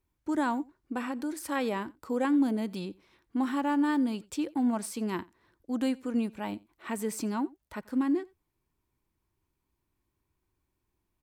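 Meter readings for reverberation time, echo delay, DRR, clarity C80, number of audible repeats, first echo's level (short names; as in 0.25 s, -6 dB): none, 88 ms, none, none, 1, -24.0 dB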